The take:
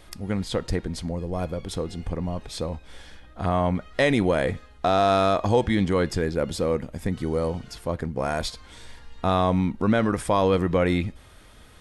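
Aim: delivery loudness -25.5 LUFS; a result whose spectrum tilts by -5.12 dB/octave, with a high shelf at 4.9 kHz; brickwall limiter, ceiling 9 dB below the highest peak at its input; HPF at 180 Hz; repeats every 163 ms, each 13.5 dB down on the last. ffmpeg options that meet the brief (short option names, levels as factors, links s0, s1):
-af "highpass=180,highshelf=f=4900:g=-5.5,alimiter=limit=0.133:level=0:latency=1,aecho=1:1:163|326:0.211|0.0444,volume=1.78"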